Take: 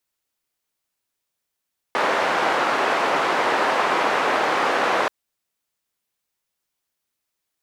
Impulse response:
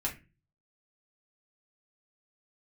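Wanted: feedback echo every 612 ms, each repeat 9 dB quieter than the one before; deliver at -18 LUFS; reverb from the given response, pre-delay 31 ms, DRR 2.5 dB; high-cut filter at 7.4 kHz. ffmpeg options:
-filter_complex "[0:a]lowpass=7400,aecho=1:1:612|1224|1836|2448:0.355|0.124|0.0435|0.0152,asplit=2[s0][s1];[1:a]atrim=start_sample=2205,adelay=31[s2];[s1][s2]afir=irnorm=-1:irlink=0,volume=0.473[s3];[s0][s3]amix=inputs=2:normalize=0,volume=1.06"

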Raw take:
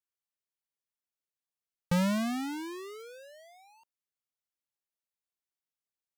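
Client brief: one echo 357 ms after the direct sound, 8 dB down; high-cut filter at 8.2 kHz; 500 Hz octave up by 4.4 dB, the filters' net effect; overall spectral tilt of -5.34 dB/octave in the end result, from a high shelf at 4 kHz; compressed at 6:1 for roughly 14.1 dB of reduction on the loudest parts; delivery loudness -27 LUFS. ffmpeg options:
-af "lowpass=8200,equalizer=f=500:t=o:g=5.5,highshelf=f=4000:g=-3.5,acompressor=threshold=0.0112:ratio=6,aecho=1:1:357:0.398,volume=5.31"

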